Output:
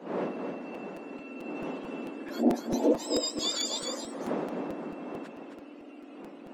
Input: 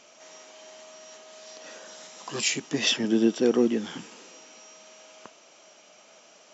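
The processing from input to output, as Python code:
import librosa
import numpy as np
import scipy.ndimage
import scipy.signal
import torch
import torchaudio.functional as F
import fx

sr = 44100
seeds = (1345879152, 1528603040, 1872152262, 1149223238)

p1 = fx.octave_mirror(x, sr, pivot_hz=1300.0)
p2 = fx.dmg_wind(p1, sr, seeds[0], corner_hz=490.0, level_db=-42.0)
p3 = scipy.signal.sosfilt(scipy.signal.butter(8, 180.0, 'highpass', fs=sr, output='sos'), p2)
p4 = fx.high_shelf(p3, sr, hz=3400.0, db=-8.5)
p5 = fx.rider(p4, sr, range_db=3, speed_s=0.5)
p6 = p5 + fx.echo_single(p5, sr, ms=265, db=-6.0, dry=0)
y = fx.buffer_crackle(p6, sr, first_s=0.74, period_s=0.22, block=256, kind='repeat')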